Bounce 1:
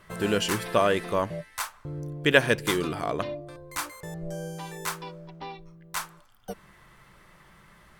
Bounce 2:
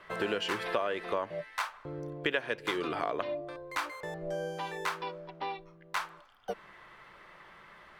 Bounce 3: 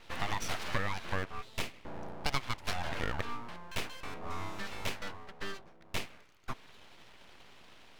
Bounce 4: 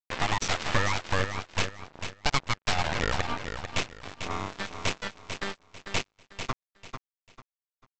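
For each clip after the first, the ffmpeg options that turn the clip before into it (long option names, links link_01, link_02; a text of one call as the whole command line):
ffmpeg -i in.wav -filter_complex "[0:a]acrossover=split=320 4300:gain=0.2 1 0.141[link_01][link_02][link_03];[link_01][link_02][link_03]amix=inputs=3:normalize=0,acompressor=threshold=-32dB:ratio=6,volume=3.5dB" out.wav
ffmpeg -i in.wav -af "aeval=exprs='abs(val(0))':channel_layout=same" out.wav
ffmpeg -i in.wav -af "aresample=16000,acrusher=bits=4:mix=0:aa=0.5,aresample=44100,aecho=1:1:445|890|1335:0.398|0.111|0.0312,volume=5.5dB" out.wav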